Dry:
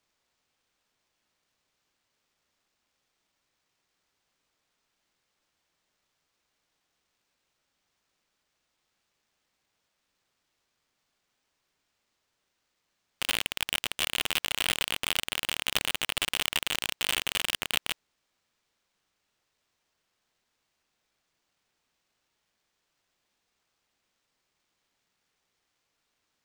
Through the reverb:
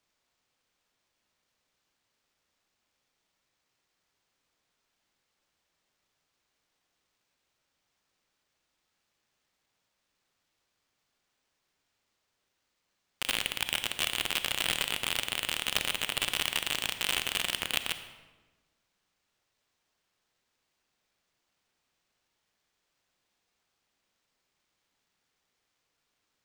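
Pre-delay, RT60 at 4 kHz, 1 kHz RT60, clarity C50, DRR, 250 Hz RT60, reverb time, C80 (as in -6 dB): 33 ms, 0.85 s, 1.2 s, 10.0 dB, 9.5 dB, 1.5 s, 1.3 s, 11.5 dB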